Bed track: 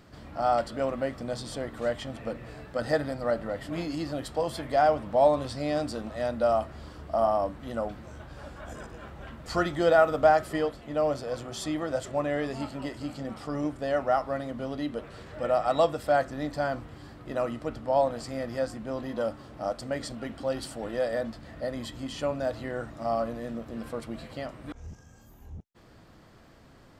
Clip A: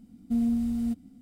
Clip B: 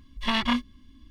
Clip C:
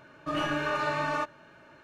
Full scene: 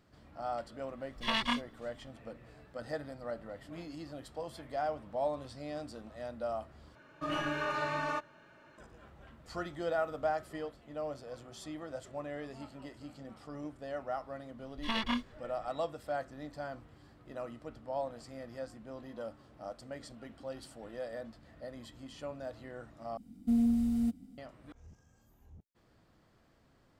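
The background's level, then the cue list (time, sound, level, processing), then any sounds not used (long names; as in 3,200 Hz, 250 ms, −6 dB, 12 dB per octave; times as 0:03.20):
bed track −12.5 dB
0:01.00: mix in B −5 dB + low-shelf EQ 340 Hz −7.5 dB
0:06.95: overwrite with C −5 dB
0:14.61: mix in B −8.5 dB
0:23.17: overwrite with A −2 dB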